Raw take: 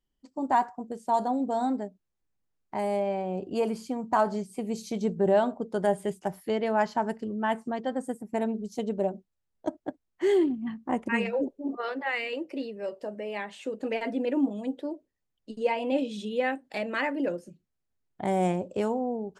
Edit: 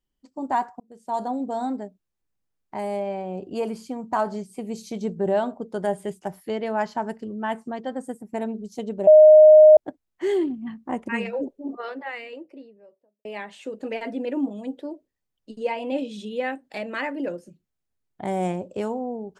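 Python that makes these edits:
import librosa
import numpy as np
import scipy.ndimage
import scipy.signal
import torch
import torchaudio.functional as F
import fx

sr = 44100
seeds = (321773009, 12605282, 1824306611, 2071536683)

y = fx.studio_fade_out(x, sr, start_s=11.59, length_s=1.66)
y = fx.edit(y, sr, fx.fade_in_span(start_s=0.8, length_s=0.43),
    fx.bleep(start_s=9.07, length_s=0.7, hz=617.0, db=-6.5), tone=tone)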